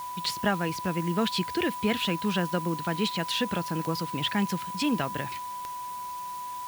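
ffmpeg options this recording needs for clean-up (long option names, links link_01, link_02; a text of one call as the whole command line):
ffmpeg -i in.wav -af "adeclick=threshold=4,bandreject=frequency=990:width=30,afwtdn=0.004" out.wav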